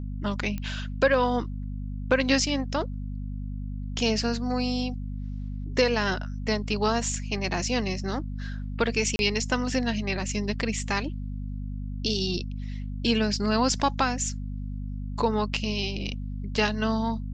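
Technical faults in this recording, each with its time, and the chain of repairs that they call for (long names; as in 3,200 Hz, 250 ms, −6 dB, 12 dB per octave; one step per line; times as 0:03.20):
mains hum 50 Hz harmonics 5 −33 dBFS
0:00.58: click −20 dBFS
0:09.16–0:09.19: drop-out 31 ms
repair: click removal
hum removal 50 Hz, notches 5
repair the gap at 0:09.16, 31 ms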